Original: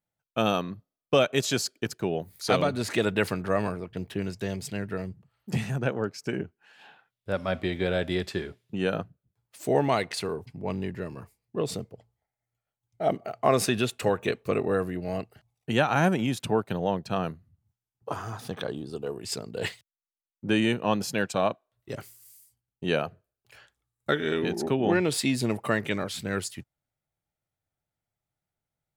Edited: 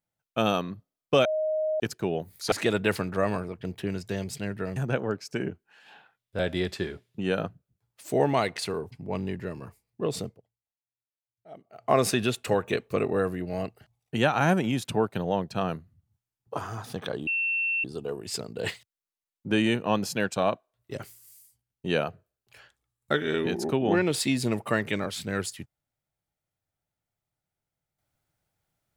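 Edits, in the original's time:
1.25–1.80 s: bleep 623 Hz -24 dBFS
2.52–2.84 s: delete
5.08–5.69 s: delete
7.32–7.94 s: delete
11.81–13.44 s: dip -21 dB, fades 0.17 s
18.82 s: add tone 2.7 kHz -24 dBFS 0.57 s

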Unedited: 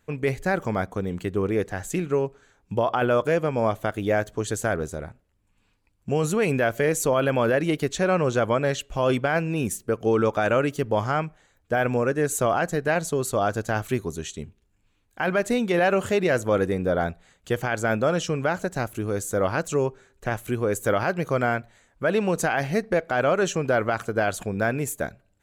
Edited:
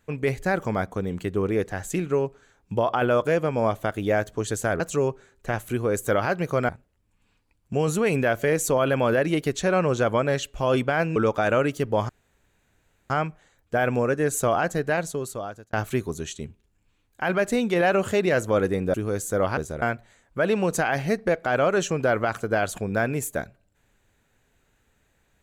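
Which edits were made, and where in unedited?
4.80–5.05 s: swap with 19.58–21.47 s
9.52–10.15 s: delete
11.08 s: insert room tone 1.01 s
12.79–13.71 s: fade out
16.92–18.95 s: delete

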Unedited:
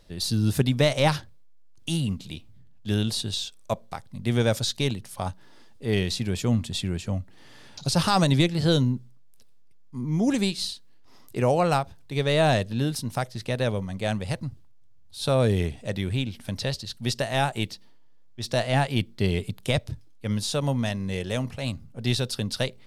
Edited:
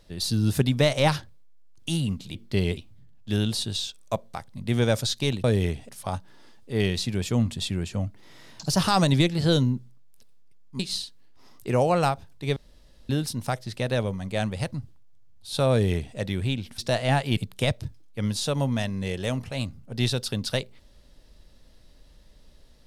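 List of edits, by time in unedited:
7.19–8.00 s: speed 109%
9.99–10.48 s: delete
12.25–12.78 s: room tone
15.40–15.85 s: copy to 5.02 s
16.47–18.43 s: delete
19.02–19.44 s: move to 2.35 s

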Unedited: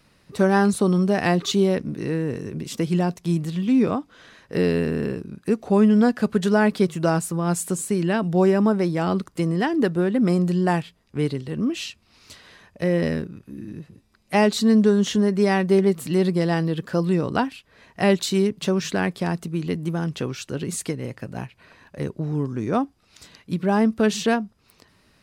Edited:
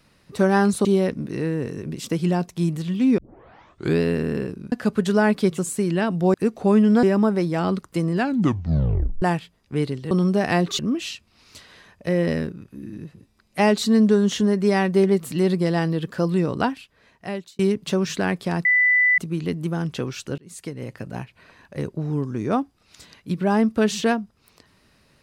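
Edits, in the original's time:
0.85–1.53 s: move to 11.54 s
3.86 s: tape start 0.83 s
5.40–6.09 s: move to 8.46 s
6.95–7.70 s: delete
9.55 s: tape stop 1.10 s
17.38–18.34 s: fade out
19.40 s: add tone 1.99 kHz -14 dBFS 0.53 s
20.60–21.17 s: fade in linear

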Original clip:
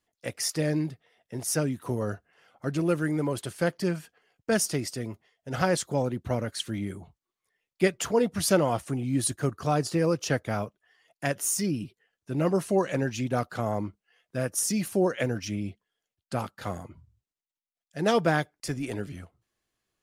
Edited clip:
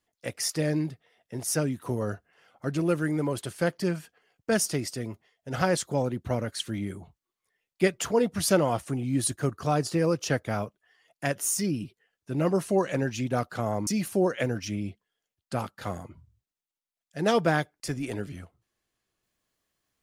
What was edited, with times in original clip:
13.87–14.67 s: delete

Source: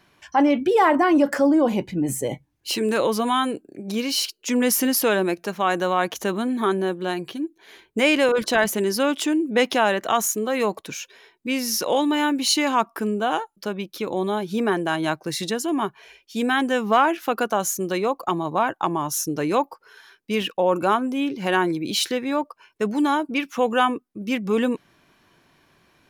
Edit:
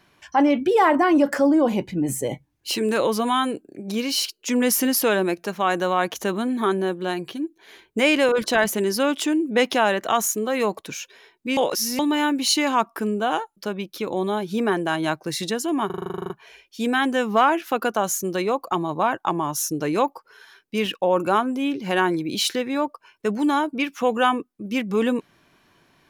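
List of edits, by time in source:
11.57–11.99 s: reverse
15.86 s: stutter 0.04 s, 12 plays

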